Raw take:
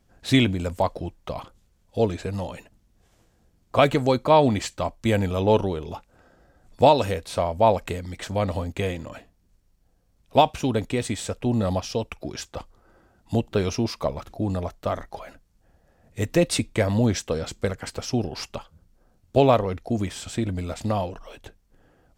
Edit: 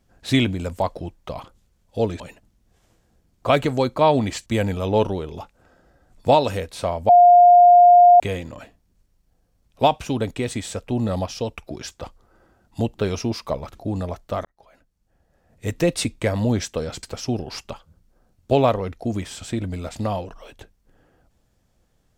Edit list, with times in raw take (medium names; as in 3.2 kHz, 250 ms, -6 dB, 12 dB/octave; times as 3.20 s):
2.20–2.49 s: delete
4.75–5.00 s: delete
7.63–8.74 s: bleep 707 Hz -7 dBFS
14.99–16.23 s: fade in
17.57–17.88 s: delete